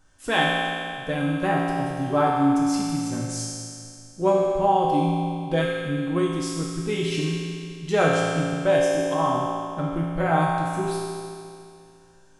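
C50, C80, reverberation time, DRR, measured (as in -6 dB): -1.5 dB, 0.0 dB, 2.4 s, -5.0 dB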